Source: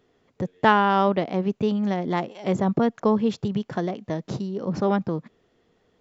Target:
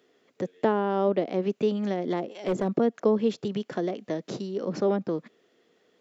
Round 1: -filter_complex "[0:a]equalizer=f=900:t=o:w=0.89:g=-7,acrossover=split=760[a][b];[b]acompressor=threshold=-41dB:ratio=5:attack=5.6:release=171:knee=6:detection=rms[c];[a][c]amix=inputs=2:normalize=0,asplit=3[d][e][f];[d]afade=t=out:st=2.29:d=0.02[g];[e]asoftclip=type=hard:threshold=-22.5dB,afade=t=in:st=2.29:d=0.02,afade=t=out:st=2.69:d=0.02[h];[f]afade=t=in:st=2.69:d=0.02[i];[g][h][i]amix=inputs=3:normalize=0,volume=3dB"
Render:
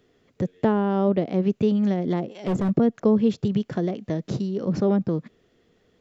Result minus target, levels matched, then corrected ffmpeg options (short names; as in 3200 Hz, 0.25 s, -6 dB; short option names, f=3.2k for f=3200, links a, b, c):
250 Hz band +3.0 dB
-filter_complex "[0:a]highpass=310,equalizer=f=900:t=o:w=0.89:g=-7,acrossover=split=760[a][b];[b]acompressor=threshold=-41dB:ratio=5:attack=5.6:release=171:knee=6:detection=rms[c];[a][c]amix=inputs=2:normalize=0,asplit=3[d][e][f];[d]afade=t=out:st=2.29:d=0.02[g];[e]asoftclip=type=hard:threshold=-22.5dB,afade=t=in:st=2.29:d=0.02,afade=t=out:st=2.69:d=0.02[h];[f]afade=t=in:st=2.69:d=0.02[i];[g][h][i]amix=inputs=3:normalize=0,volume=3dB"